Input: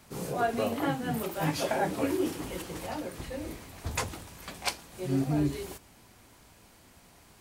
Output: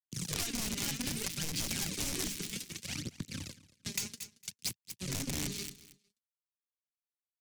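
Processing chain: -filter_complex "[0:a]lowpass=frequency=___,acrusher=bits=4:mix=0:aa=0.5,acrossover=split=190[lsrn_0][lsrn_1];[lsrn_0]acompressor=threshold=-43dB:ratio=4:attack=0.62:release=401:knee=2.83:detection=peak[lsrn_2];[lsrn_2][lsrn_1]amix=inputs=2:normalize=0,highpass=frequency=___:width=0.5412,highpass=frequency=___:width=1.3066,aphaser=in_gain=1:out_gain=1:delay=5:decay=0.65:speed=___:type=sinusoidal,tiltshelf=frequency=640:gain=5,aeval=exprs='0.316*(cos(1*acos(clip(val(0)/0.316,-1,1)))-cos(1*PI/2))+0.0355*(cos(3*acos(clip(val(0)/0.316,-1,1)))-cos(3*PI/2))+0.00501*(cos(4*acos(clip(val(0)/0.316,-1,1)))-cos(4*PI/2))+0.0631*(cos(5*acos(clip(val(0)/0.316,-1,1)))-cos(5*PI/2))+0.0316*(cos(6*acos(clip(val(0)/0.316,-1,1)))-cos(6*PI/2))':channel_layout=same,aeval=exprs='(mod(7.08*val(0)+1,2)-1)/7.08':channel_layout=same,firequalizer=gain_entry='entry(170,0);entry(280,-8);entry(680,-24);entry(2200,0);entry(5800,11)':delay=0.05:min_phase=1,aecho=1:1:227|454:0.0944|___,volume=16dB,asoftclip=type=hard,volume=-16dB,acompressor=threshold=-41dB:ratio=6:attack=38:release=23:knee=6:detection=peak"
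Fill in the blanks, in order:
6000, 100, 100, 0.63, 0.0189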